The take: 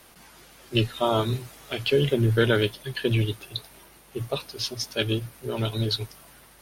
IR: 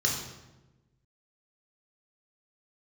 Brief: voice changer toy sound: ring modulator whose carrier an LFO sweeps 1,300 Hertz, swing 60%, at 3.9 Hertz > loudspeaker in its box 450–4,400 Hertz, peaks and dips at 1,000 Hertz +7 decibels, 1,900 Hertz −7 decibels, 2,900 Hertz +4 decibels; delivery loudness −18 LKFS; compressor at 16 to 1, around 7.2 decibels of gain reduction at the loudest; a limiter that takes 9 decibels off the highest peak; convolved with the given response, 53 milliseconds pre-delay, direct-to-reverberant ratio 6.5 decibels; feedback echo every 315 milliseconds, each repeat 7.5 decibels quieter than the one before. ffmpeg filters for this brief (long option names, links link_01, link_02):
-filter_complex "[0:a]acompressor=threshold=-23dB:ratio=16,alimiter=limit=-20.5dB:level=0:latency=1,aecho=1:1:315|630|945|1260|1575:0.422|0.177|0.0744|0.0312|0.0131,asplit=2[link_01][link_02];[1:a]atrim=start_sample=2205,adelay=53[link_03];[link_02][link_03]afir=irnorm=-1:irlink=0,volume=-15.5dB[link_04];[link_01][link_04]amix=inputs=2:normalize=0,aeval=exprs='val(0)*sin(2*PI*1300*n/s+1300*0.6/3.9*sin(2*PI*3.9*n/s))':channel_layout=same,highpass=450,equalizer=frequency=1000:width_type=q:width=4:gain=7,equalizer=frequency=1900:width_type=q:width=4:gain=-7,equalizer=frequency=2900:width_type=q:width=4:gain=4,lowpass=frequency=4400:width=0.5412,lowpass=frequency=4400:width=1.3066,volume=13.5dB"